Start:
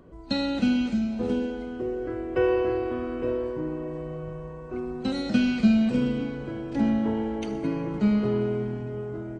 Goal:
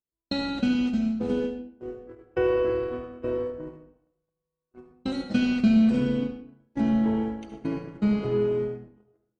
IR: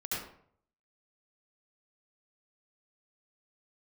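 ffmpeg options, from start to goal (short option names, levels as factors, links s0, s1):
-filter_complex "[0:a]agate=range=0.00355:threshold=0.0398:ratio=16:detection=peak,asplit=2[s0][s1];[1:a]atrim=start_sample=2205[s2];[s1][s2]afir=irnorm=-1:irlink=0,volume=0.376[s3];[s0][s3]amix=inputs=2:normalize=0,volume=0.708"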